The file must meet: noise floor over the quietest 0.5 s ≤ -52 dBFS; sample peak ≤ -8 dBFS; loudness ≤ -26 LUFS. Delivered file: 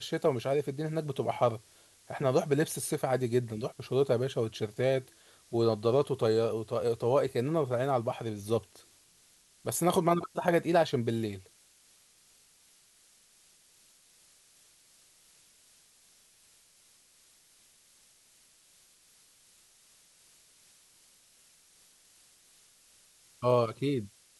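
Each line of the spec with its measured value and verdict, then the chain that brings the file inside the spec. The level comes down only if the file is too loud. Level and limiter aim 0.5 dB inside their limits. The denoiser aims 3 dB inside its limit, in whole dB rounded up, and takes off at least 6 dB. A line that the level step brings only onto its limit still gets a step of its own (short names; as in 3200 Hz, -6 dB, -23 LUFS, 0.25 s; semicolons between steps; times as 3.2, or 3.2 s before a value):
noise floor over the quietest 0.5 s -63 dBFS: OK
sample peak -12.0 dBFS: OK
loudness -30.0 LUFS: OK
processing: none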